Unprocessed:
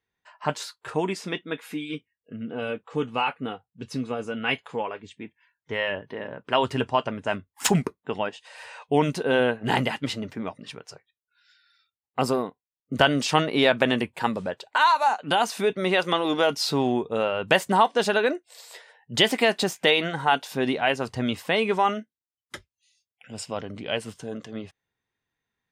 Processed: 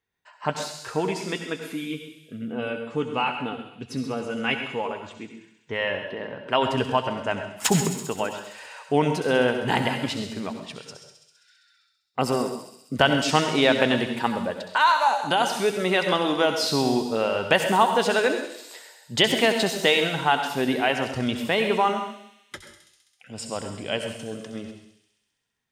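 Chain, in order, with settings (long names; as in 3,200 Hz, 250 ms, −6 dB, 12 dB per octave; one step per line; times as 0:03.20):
on a send: delay with a high-pass on its return 66 ms, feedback 78%, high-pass 4,700 Hz, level −6.5 dB
on the sum: dense smooth reverb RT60 0.65 s, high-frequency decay 0.95×, pre-delay 75 ms, DRR 6.5 dB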